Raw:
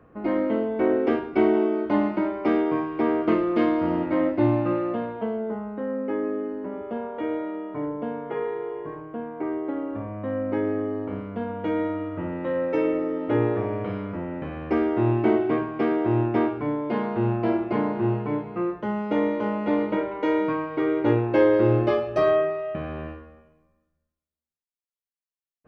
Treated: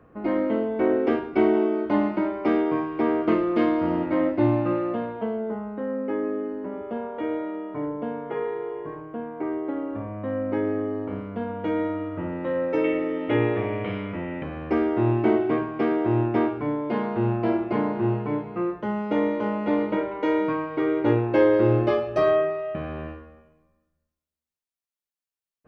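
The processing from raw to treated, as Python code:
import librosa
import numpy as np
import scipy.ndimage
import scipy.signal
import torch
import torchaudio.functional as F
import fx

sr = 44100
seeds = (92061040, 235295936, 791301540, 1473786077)

y = fx.band_shelf(x, sr, hz=2600.0, db=9.0, octaves=1.1, at=(12.84, 14.43))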